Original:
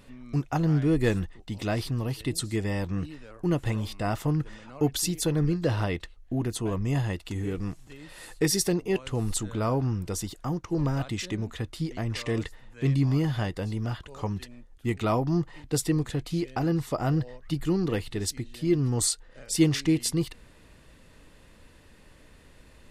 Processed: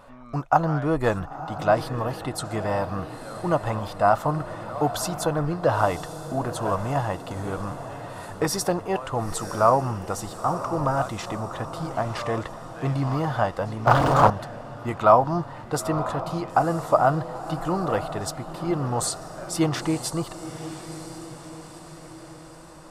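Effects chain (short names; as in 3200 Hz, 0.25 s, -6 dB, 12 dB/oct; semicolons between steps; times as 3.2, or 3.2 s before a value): diffused feedback echo 0.974 s, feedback 55%, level -11.5 dB; 13.87–14.3 sample leveller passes 5; band shelf 900 Hz +15.5 dB; gain -2 dB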